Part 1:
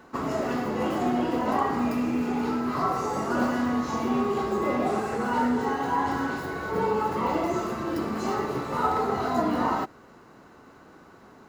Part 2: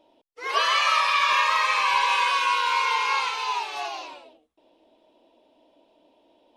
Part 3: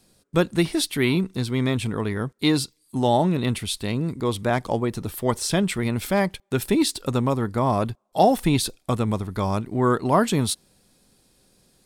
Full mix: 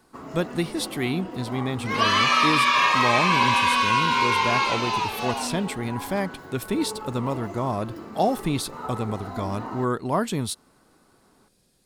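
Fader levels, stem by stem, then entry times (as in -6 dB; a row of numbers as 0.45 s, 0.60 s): -10.0 dB, +1.5 dB, -5.0 dB; 0.00 s, 1.45 s, 0.00 s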